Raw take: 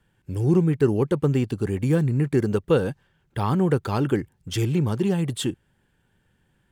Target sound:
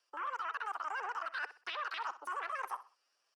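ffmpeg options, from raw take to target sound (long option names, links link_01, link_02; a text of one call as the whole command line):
ffmpeg -i in.wav -filter_complex "[0:a]lowpass=6000,afwtdn=0.0447,highpass=160,acrossover=split=320 2600:gain=0.126 1 0.0891[link_01][link_02][link_03];[link_01][link_02][link_03]amix=inputs=3:normalize=0,acrossover=split=240|950[link_04][link_05][link_06];[link_04]acompressor=threshold=-56dB:ratio=4[link_07];[link_05]acompressor=threshold=-31dB:ratio=4[link_08];[link_06]acompressor=threshold=-41dB:ratio=4[link_09];[link_07][link_08][link_09]amix=inputs=3:normalize=0,alimiter=level_in=7.5dB:limit=-24dB:level=0:latency=1:release=81,volume=-7.5dB,areverse,acompressor=threshold=-48dB:ratio=6,areverse,asetrate=70004,aresample=44100,atempo=0.629961,aecho=1:1:126|252|378:0.188|0.0546|0.0158,asetrate=88200,aresample=44100,volume=11.5dB" out.wav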